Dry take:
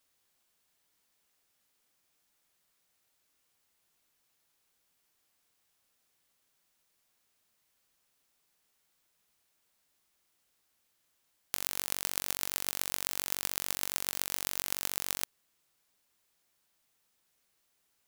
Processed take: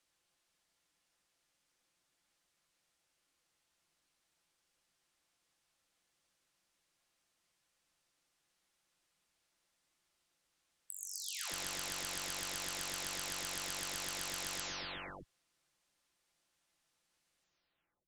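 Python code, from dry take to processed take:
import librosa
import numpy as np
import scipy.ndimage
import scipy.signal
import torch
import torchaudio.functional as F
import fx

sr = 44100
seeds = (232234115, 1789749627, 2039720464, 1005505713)

y = fx.spec_delay(x, sr, highs='early', ms=639)
y = scipy.signal.sosfilt(scipy.signal.butter(2, 8000.0, 'lowpass', fs=sr, output='sos'), y)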